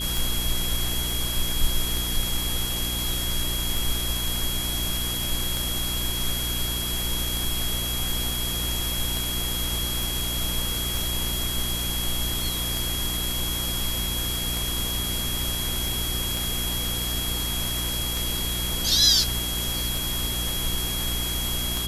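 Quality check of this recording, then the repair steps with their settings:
hum 60 Hz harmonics 6 -32 dBFS
tick 33 1/3 rpm
whine 3.3 kHz -30 dBFS
10.03 s: pop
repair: de-click; de-hum 60 Hz, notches 6; band-stop 3.3 kHz, Q 30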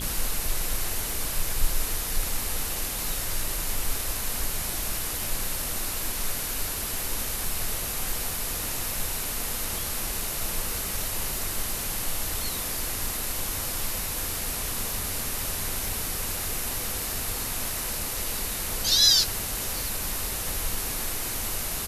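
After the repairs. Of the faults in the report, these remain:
nothing left

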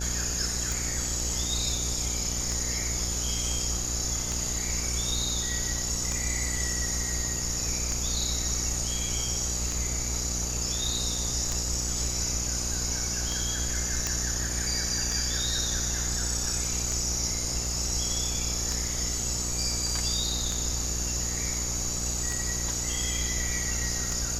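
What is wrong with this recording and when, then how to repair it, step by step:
buzz 60 Hz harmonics 15 -34 dBFS
tick 33 1/3 rpm
14.07 s: pop -11 dBFS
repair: de-click; de-hum 60 Hz, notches 15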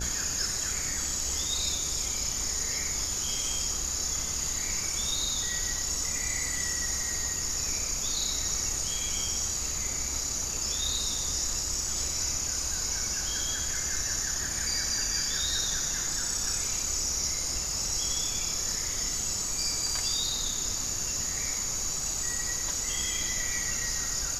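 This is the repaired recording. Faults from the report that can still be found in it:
nothing left

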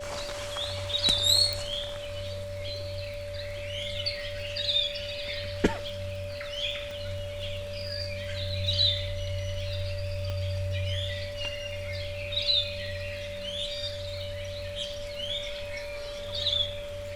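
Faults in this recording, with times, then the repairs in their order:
crackle 30 per s -38 dBFS
whine 580 Hz -36 dBFS
1.53 s: pop
6.91 s: pop
10.30 s: pop -22 dBFS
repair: de-click; band-stop 580 Hz, Q 30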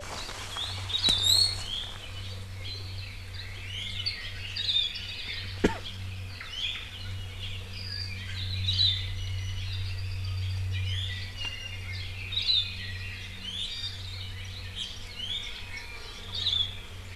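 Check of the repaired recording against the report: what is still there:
1.53 s: pop

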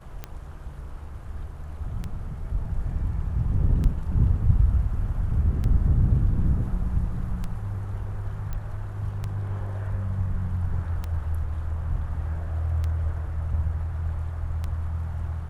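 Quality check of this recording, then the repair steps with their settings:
tick 33 1/3 rpm -18 dBFS
8.53 s: pop -20 dBFS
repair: de-click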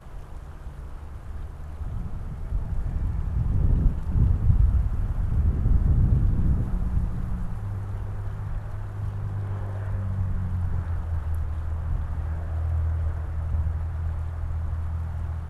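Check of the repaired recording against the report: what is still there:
nothing left

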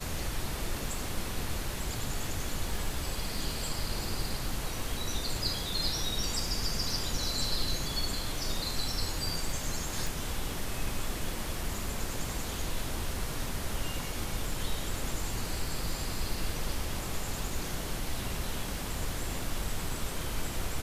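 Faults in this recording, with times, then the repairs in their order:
crackle 24 per s -39 dBFS
10.07 s: pop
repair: de-click

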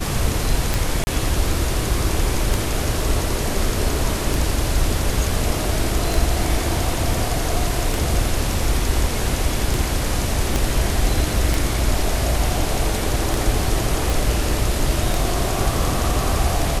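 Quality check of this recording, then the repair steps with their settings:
tick 33 1/3 rpm
1.04–1.07 s: dropout 30 ms
10.56 s: pop
14.10 s: pop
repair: de-click; interpolate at 1.04 s, 30 ms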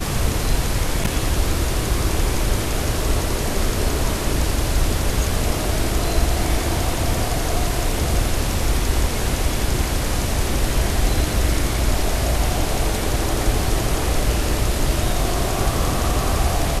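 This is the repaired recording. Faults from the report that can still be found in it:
10.56 s: pop

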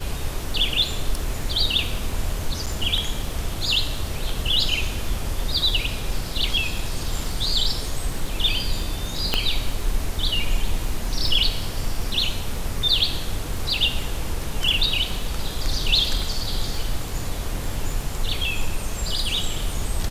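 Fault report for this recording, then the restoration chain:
crackle 25 per s -29 dBFS
2.66–2.67 s: dropout 7.2 ms
9.34 s: pop -5 dBFS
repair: de-click; interpolate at 2.66 s, 7.2 ms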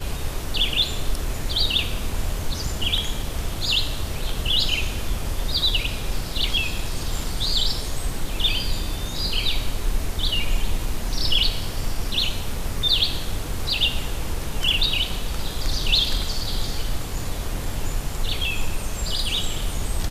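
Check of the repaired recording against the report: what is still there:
9.34 s: pop

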